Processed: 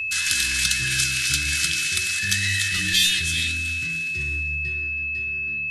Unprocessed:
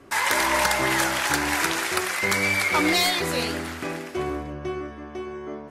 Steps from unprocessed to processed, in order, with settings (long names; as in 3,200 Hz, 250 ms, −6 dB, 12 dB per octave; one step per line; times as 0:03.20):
Chebyshev band-stop filter 120–4,200 Hz, order 2
delay that swaps between a low-pass and a high-pass 161 ms, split 910 Hz, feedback 57%, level −11.5 dB
formants moved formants −3 semitones
steady tone 2,600 Hz −31 dBFS
floating-point word with a short mantissa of 8 bits
level +6.5 dB